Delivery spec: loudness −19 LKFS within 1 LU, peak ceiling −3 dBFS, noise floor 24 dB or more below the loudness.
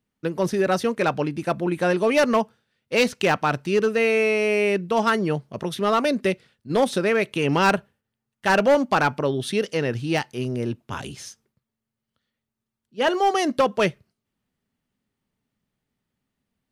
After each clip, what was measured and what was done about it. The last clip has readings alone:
share of clipped samples 0.6%; peaks flattened at −12.5 dBFS; integrated loudness −22.5 LKFS; sample peak −12.5 dBFS; target loudness −19.0 LKFS
→ clipped peaks rebuilt −12.5 dBFS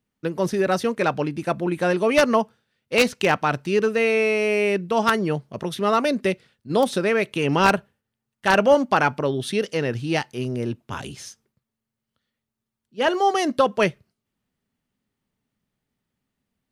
share of clipped samples 0.0%; integrated loudness −22.0 LKFS; sample peak −3.5 dBFS; target loudness −19.0 LKFS
→ level +3 dB
brickwall limiter −3 dBFS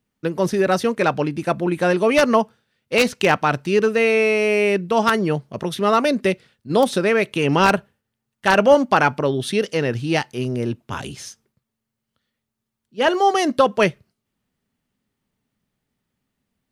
integrated loudness −19.0 LKFS; sample peak −3.0 dBFS; background noise floor −81 dBFS

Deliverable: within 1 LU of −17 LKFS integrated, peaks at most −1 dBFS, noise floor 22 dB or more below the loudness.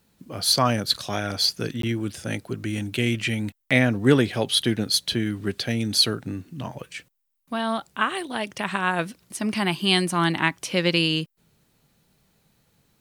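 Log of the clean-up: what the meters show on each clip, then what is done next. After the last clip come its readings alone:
number of dropouts 1; longest dropout 13 ms; integrated loudness −23.5 LKFS; sample peak −4.0 dBFS; target loudness −17.0 LKFS
→ repair the gap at 0:01.82, 13 ms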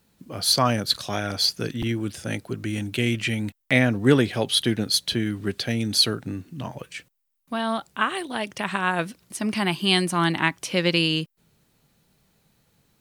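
number of dropouts 0; integrated loudness −23.5 LKFS; sample peak −4.0 dBFS; target loudness −17.0 LKFS
→ level +6.5 dB
brickwall limiter −1 dBFS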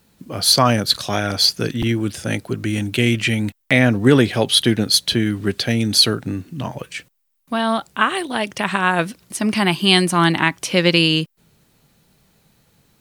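integrated loudness −17.5 LKFS; sample peak −1.0 dBFS; background noise floor −64 dBFS

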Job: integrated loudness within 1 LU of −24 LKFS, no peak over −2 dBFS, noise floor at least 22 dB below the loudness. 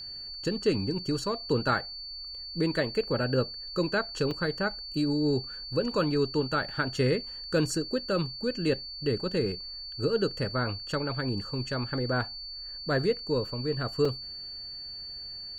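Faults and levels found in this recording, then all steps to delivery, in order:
number of dropouts 2; longest dropout 3.9 ms; interfering tone 4,500 Hz; level of the tone −38 dBFS; integrated loudness −30.0 LKFS; sample peak −14.5 dBFS; target loudness −24.0 LKFS
→ repair the gap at 0:04.31/0:14.05, 3.9 ms
notch filter 4,500 Hz, Q 30
level +6 dB

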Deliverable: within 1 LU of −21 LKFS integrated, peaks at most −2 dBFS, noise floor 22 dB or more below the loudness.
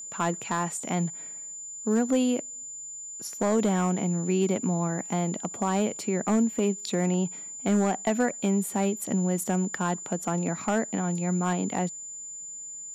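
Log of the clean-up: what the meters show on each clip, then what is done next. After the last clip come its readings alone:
share of clipped samples 0.6%; peaks flattened at −16.5 dBFS; interfering tone 7,100 Hz; level of the tone −37 dBFS; integrated loudness −28.0 LKFS; sample peak −16.5 dBFS; target loudness −21.0 LKFS
→ clipped peaks rebuilt −16.5 dBFS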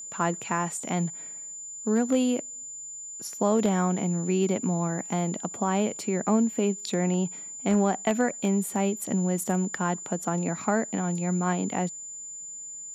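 share of clipped samples 0.0%; interfering tone 7,100 Hz; level of the tone −37 dBFS
→ notch filter 7,100 Hz, Q 30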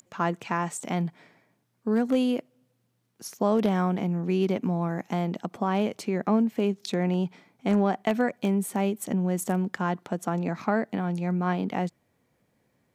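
interfering tone none found; integrated loudness −27.5 LKFS; sample peak −10.0 dBFS; target loudness −21.0 LKFS
→ level +6.5 dB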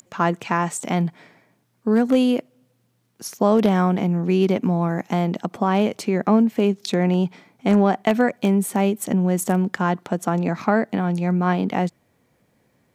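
integrated loudness −21.0 LKFS; sample peak −3.5 dBFS; background noise floor −66 dBFS

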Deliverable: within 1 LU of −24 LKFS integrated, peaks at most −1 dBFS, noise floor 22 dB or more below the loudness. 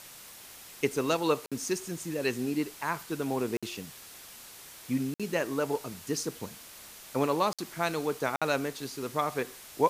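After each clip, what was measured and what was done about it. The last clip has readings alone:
number of dropouts 5; longest dropout 56 ms; background noise floor −49 dBFS; target noise floor −54 dBFS; integrated loudness −32.0 LKFS; sample peak −11.0 dBFS; target loudness −24.0 LKFS
→ repair the gap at 0:01.46/0:03.57/0:05.14/0:07.53/0:08.36, 56 ms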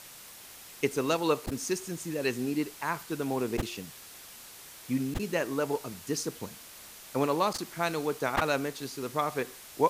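number of dropouts 0; background noise floor −49 dBFS; target noise floor −54 dBFS
→ broadband denoise 6 dB, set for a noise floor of −49 dBFS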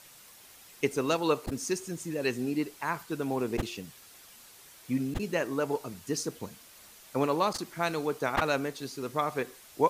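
background noise floor −54 dBFS; integrated loudness −31.5 LKFS; sample peak −11.0 dBFS; target loudness −24.0 LKFS
→ level +7.5 dB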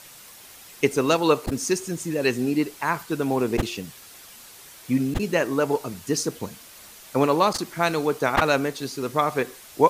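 integrated loudness −24.0 LKFS; sample peak −3.5 dBFS; background noise floor −46 dBFS

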